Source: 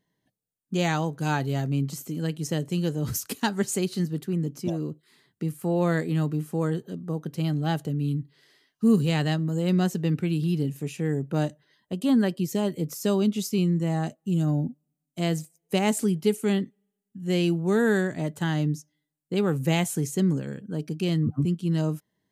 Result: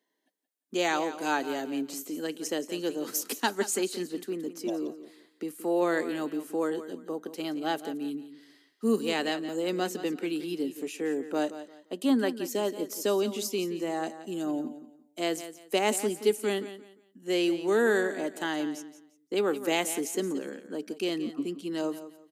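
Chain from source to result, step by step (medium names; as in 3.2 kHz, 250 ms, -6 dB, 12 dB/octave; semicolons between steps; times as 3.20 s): steep high-pass 260 Hz 36 dB/octave; on a send: feedback delay 174 ms, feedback 26%, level -13 dB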